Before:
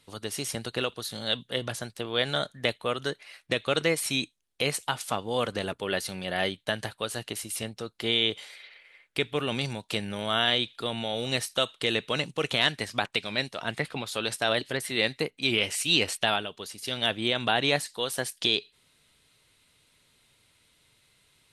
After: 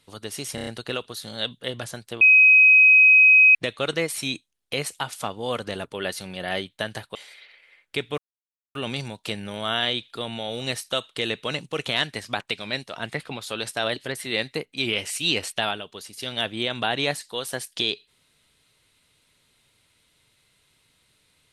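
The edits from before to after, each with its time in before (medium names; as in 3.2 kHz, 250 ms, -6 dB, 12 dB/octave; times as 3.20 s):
0.55 s: stutter 0.03 s, 5 plays
2.09–3.43 s: bleep 2.53 kHz -10 dBFS
7.03–8.37 s: delete
9.40 s: insert silence 0.57 s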